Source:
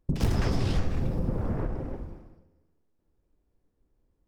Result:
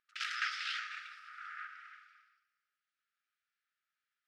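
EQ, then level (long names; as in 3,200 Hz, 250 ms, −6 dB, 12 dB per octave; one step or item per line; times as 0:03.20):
linear-phase brick-wall high-pass 1,200 Hz
low-pass filter 3,500 Hz 12 dB per octave
+6.0 dB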